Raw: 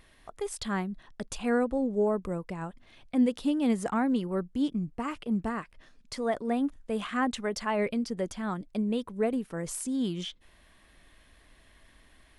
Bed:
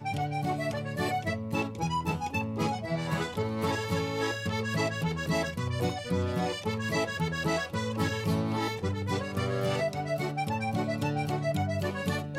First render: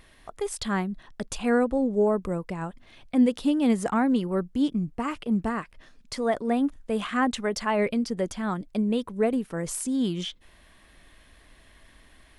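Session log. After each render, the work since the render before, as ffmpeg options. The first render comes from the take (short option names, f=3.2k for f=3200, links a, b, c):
-af "volume=4dB"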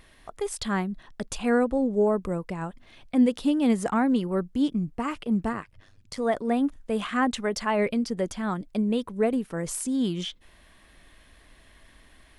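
-filter_complex "[0:a]asplit=3[a][b][c];[a]afade=t=out:st=5.52:d=0.02[d];[b]tremolo=f=100:d=0.857,afade=t=in:st=5.52:d=0.02,afade=t=out:st=6.17:d=0.02[e];[c]afade=t=in:st=6.17:d=0.02[f];[d][e][f]amix=inputs=3:normalize=0"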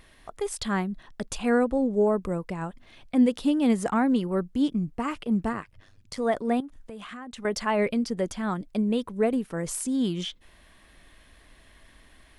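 -filter_complex "[0:a]asettb=1/sr,asplit=3[a][b][c];[a]atrim=end=6.604[d];[b]atrim=start=6.6:end=7.45,asetpts=PTS-STARTPTS,afade=t=in:d=0.004:c=qsin,afade=t=out:st=0.846:d=0.004:c=qsin,acompressor=threshold=-37dB:ratio=8:attack=3.2:release=140:knee=1:detection=peak[e];[c]atrim=start=7.446[f];[d][e]acrossfade=d=0.004:c1=hsin:c2=qsin[g];[g][f]acrossfade=d=0.004:c1=qsin:c2=hsin"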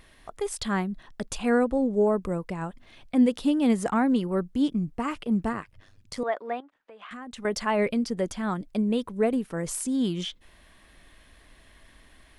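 -filter_complex "[0:a]asettb=1/sr,asplit=3[a][b][c];[a]atrim=end=6.234[d];[b]atrim=start=6.23:end=7.11,asetpts=PTS-STARTPTS,afade=t=in:d=0.004:c=qsin,afade=t=out:st=0.876:d=0.004:c=qsin,highpass=600,lowpass=2.6k[e];[c]atrim=start=7.106[f];[d][e]acrossfade=d=0.004:c1=hsin:c2=qsin[g];[g][f]acrossfade=d=0.004:c1=qsin:c2=hsin"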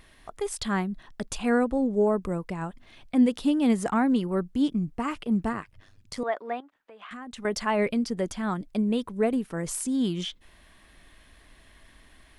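-af "equalizer=f=520:t=o:w=0.35:g=-2.5"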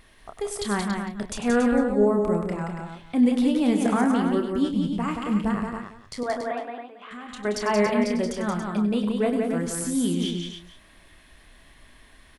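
-filter_complex "[0:a]asplit=2[a][b];[b]adelay=29,volume=-8dB[c];[a][c]amix=inputs=2:normalize=0,aecho=1:1:98|177|281|454:0.282|0.596|0.398|0.106"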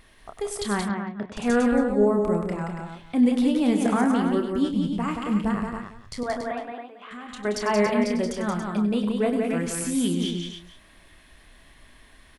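-filter_complex "[0:a]asettb=1/sr,asplit=3[a][b][c];[a]atrim=end=0.894[d];[b]atrim=start=0.89:end=1.37,asetpts=PTS-STARTPTS,afade=t=in:d=0.004:c=qsin,afade=t=out:st=0.476:d=0.004:c=qsin,highpass=110,lowpass=2.2k[e];[c]atrim=start=1.366[f];[d][e]acrossfade=d=0.004:c1=hsin:c2=qsin[g];[g][f]acrossfade=d=0.004:c1=qsin:c2=hsin,asettb=1/sr,asplit=3[h][i][j];[h]atrim=end=5.534[k];[i]atrim=start=5.53:end=6.72,asetpts=PTS-STARTPTS,afade=t=in:d=0.004:c=qsin,afade=t=out:st=1.186:d=0.004:c=qsin,asubboost=boost=7:cutoff=200[l];[j]atrim=start=6.716[m];[k][l]acrossfade=d=0.004:c1=hsin:c2=qsin[n];[n][m]acrossfade=d=0.004:c1=qsin:c2=hsin,asettb=1/sr,asplit=3[o][p][q];[o]atrim=end=9.444[r];[p]atrim=start=9.44:end=10.08,asetpts=PTS-STARTPTS,afade=t=in:d=0.004:c=qsin,afade=t=out:st=0.636:d=0.004:c=qsin,equalizer=f=2.5k:t=o:w=0.52:g=11[s];[q]atrim=start=10.076[t];[r][s]acrossfade=d=0.004:c1=hsin:c2=qsin[u];[u][t]acrossfade=d=0.004:c1=qsin:c2=hsin"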